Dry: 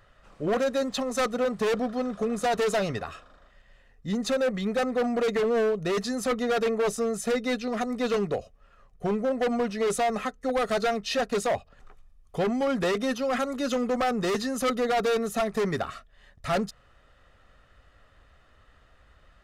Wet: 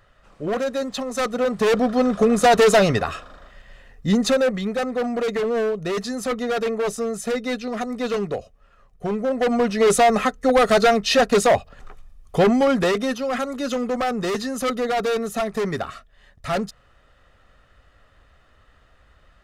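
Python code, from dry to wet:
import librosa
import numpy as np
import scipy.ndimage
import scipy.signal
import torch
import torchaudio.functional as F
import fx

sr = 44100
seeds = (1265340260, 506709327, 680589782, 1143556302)

y = fx.gain(x, sr, db=fx.line((1.11, 1.5), (2.08, 11.0), (4.07, 11.0), (4.74, 2.0), (9.1, 2.0), (9.9, 10.0), (12.49, 10.0), (13.2, 2.5)))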